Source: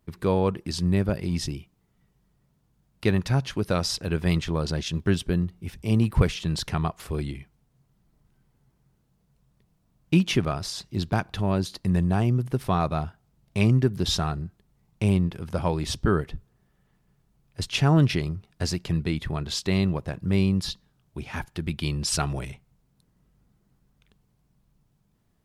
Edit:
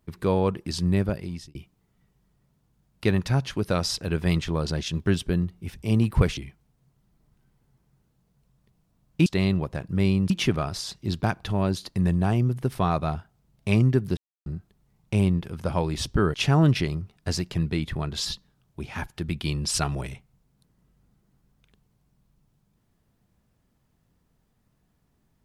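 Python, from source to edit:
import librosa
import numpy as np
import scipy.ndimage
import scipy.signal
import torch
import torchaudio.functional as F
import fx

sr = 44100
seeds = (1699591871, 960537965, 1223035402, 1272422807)

y = fx.edit(x, sr, fx.fade_out_span(start_s=1.02, length_s=0.53),
    fx.cut(start_s=6.37, length_s=0.93),
    fx.silence(start_s=14.06, length_s=0.29),
    fx.cut(start_s=16.23, length_s=1.45),
    fx.move(start_s=19.59, length_s=1.04, to_s=10.19), tone=tone)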